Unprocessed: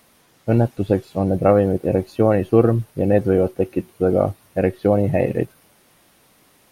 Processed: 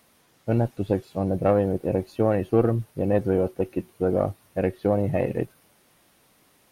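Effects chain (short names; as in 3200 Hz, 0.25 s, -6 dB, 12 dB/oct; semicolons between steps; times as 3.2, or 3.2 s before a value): one diode to ground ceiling -5 dBFS; gain -5 dB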